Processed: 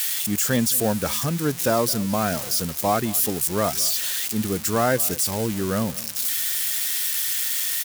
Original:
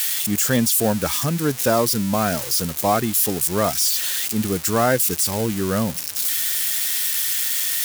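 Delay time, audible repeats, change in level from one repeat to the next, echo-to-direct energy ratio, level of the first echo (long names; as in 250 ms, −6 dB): 213 ms, 2, −15.0 dB, −19.5 dB, −19.5 dB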